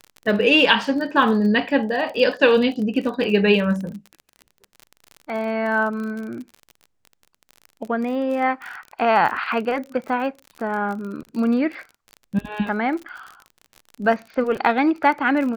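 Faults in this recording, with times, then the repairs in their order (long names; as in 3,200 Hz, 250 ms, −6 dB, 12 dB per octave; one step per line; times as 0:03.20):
surface crackle 34 per second −29 dBFS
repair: click removal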